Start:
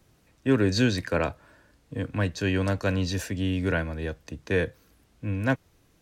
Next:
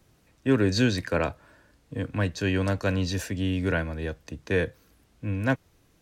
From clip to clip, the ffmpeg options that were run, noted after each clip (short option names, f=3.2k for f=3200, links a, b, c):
-af anull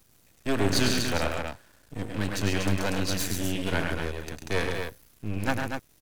-af "aecho=1:1:102|137|242:0.501|0.447|0.501,crystalizer=i=2.5:c=0,aeval=exprs='max(val(0),0)':c=same"